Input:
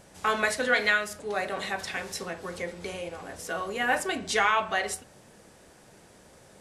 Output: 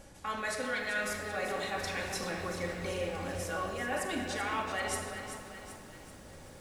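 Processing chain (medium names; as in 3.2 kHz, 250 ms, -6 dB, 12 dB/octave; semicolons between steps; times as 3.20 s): bass shelf 78 Hz +9.5 dB; reverse; compression, threshold -33 dBFS, peak gain reduction 13.5 dB; reverse; simulated room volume 3700 m³, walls mixed, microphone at 2.3 m; bit-crushed delay 385 ms, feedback 55%, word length 9-bit, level -9 dB; trim -2 dB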